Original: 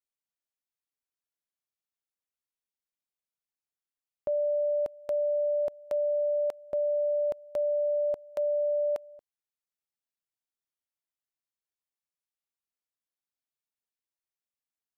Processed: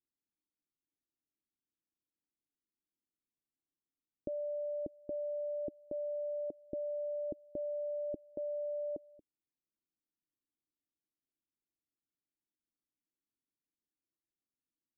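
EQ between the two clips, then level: four-pole ladder low-pass 350 Hz, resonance 60%; +12.0 dB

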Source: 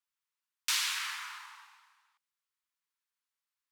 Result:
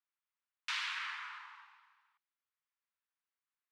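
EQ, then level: band-pass 760–2600 Hz; -1.0 dB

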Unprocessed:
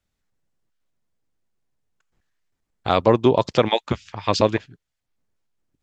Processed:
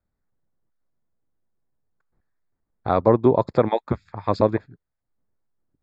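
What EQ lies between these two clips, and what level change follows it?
boxcar filter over 15 samples; 0.0 dB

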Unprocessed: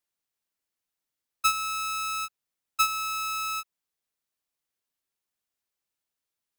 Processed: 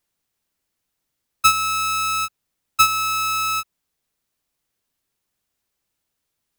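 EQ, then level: bass shelf 290 Hz +8 dB; +8.5 dB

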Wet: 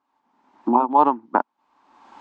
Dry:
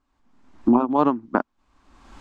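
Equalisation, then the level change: high-pass 280 Hz 12 dB/octave; distance through air 78 m; peaking EQ 890 Hz +12 dB 0.4 oct; -1.0 dB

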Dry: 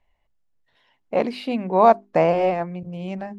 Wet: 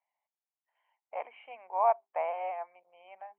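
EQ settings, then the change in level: high-pass 680 Hz 24 dB/octave; rippled Chebyshev low-pass 3.2 kHz, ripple 9 dB; distance through air 400 m; -5.5 dB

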